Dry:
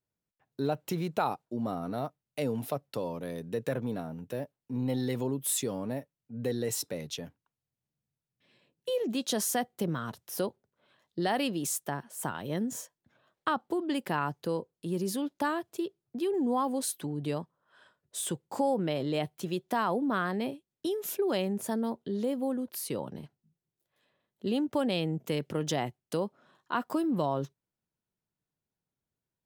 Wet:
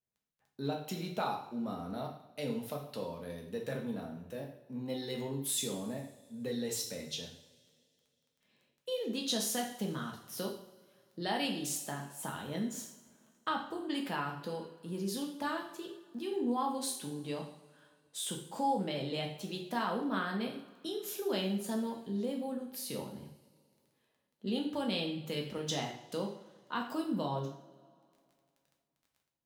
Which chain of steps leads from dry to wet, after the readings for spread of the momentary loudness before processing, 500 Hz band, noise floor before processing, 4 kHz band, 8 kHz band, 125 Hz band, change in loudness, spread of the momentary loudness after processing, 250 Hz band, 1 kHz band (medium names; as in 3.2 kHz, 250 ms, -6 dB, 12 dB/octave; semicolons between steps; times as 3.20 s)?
9 LU, -6.0 dB, under -85 dBFS, +0.5 dB, -3.5 dB, -5.5 dB, -4.5 dB, 10 LU, -4.5 dB, -4.0 dB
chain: crackle 11 per s -46 dBFS; dynamic bell 3.9 kHz, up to +7 dB, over -52 dBFS, Q 0.98; two-slope reverb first 0.57 s, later 2.5 s, from -21 dB, DRR 0 dB; trim -8.5 dB